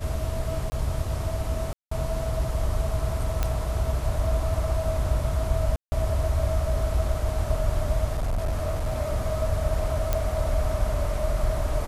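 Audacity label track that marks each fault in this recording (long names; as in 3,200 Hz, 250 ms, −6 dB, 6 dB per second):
0.700000	0.720000	drop-out 20 ms
1.730000	1.910000	drop-out 184 ms
3.430000	3.430000	click −11 dBFS
5.760000	5.920000	drop-out 160 ms
8.120000	8.970000	clipping −22 dBFS
10.130000	10.130000	click −10 dBFS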